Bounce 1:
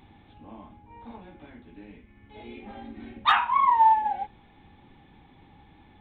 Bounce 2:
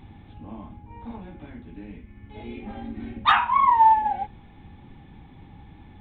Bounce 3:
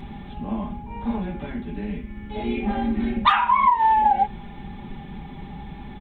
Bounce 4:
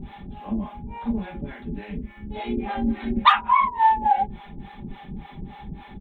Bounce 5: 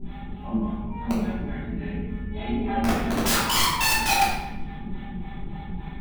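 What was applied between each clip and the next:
tone controls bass +8 dB, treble -4 dB; gain +2.5 dB
comb 5 ms, depth 66%; compressor 12:1, threshold -23 dBFS, peak gain reduction 13 dB; gain +9 dB
harmonic tremolo 3.5 Hz, depth 100%, crossover 500 Hz; gain +3 dB
wrapped overs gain 16 dB; shoebox room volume 370 m³, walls mixed, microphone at 3 m; gain -7 dB

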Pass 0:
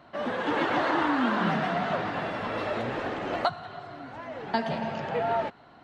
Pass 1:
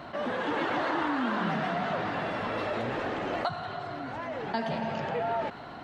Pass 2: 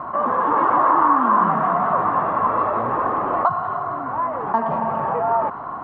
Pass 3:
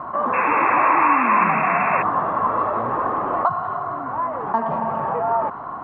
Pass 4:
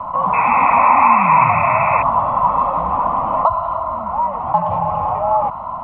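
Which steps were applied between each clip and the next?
fast leveller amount 50%; gain -5.5 dB
synth low-pass 1100 Hz, resonance Q 8.1; gain +4.5 dB
painted sound noise, 0.33–2.03, 760–2700 Hz -24 dBFS; gain -1 dB
fixed phaser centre 1700 Hz, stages 6; frequency shift -58 Hz; gain +6 dB

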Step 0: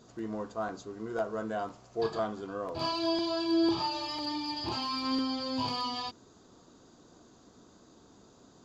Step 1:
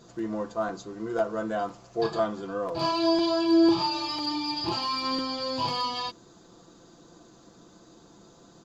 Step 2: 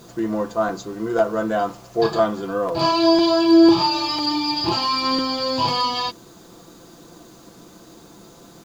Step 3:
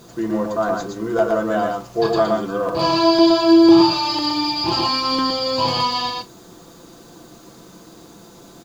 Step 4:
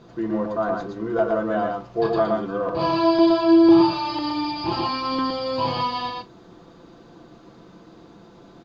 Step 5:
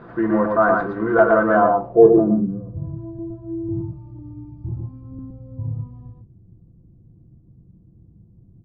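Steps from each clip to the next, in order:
comb 5.9 ms, depth 52%; gain +3.5 dB
bit-crush 10-bit; gain +8 dB
tapped delay 0.117/0.153 s -3/-17 dB
air absorption 230 m; gain -2.5 dB
low-pass sweep 1600 Hz -> 100 Hz, 1.49–2.75; gain +5.5 dB

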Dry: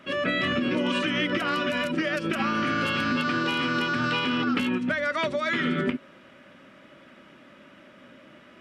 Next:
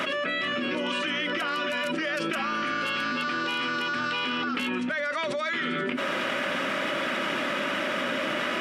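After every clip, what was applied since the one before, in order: HPF 530 Hz 6 dB/oct; fast leveller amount 100%; gain -3 dB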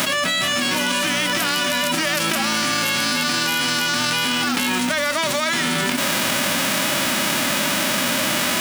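spectral whitening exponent 0.3; gain +8 dB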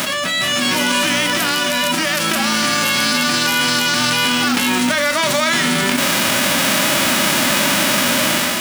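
flutter echo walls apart 7 m, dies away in 0.22 s; AGC gain up to 5.5 dB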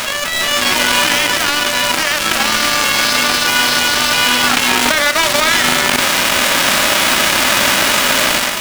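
companded quantiser 2-bit; overdrive pedal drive 14 dB, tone 5000 Hz, clips at 0 dBFS; gain -3 dB

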